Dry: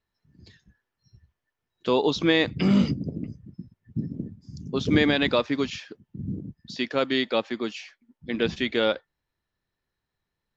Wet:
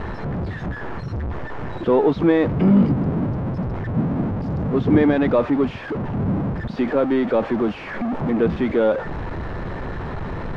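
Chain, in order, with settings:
converter with a step at zero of −22 dBFS
low-pass filter 1,100 Hz 12 dB per octave
0:06.76–0:08.30: multiband upward and downward compressor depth 40%
level +3.5 dB

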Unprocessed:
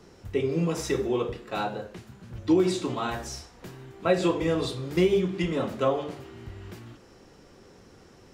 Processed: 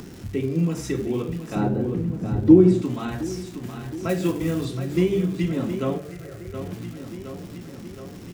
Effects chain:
0:04.09–0:04.65: floating-point word with a short mantissa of 2 bits
graphic EQ with 10 bands 125 Hz +5 dB, 250 Hz +7 dB, 500 Hz −5 dB, 1,000 Hz −5 dB, 4,000 Hz −5 dB
repeating echo 718 ms, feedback 50%, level −11 dB
in parallel at +3 dB: upward compression, threshold −24 dBFS
0:05.98–0:06.54: on the sum: phaser with its sweep stopped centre 930 Hz, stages 6
surface crackle 400 per second −29 dBFS
0:01.55–0:02.82: tilt shelving filter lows +8.5 dB, about 1,300 Hz
level −8 dB

